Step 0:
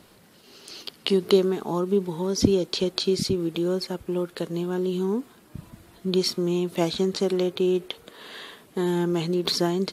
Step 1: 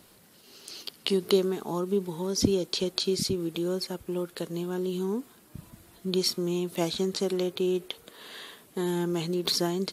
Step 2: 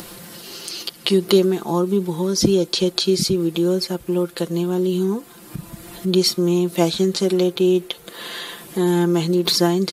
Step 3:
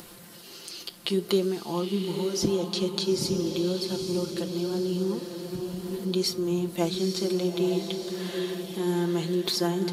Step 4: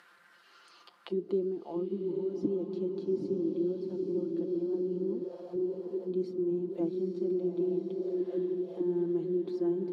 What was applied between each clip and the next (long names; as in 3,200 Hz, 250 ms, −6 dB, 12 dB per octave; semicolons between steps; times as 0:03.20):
high-shelf EQ 6,000 Hz +9 dB; level −4.5 dB
comb filter 5.8 ms; in parallel at +1.5 dB: upward compression, threshold −27 dBFS
flanger 0.63 Hz, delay 7.8 ms, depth 6.7 ms, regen −80%; feedback delay with all-pass diffusion 906 ms, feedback 43%, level −5.5 dB; level −5 dB
feedback delay with all-pass diffusion 756 ms, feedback 48%, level −8 dB; envelope filter 300–1,800 Hz, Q 3.2, down, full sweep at −24.5 dBFS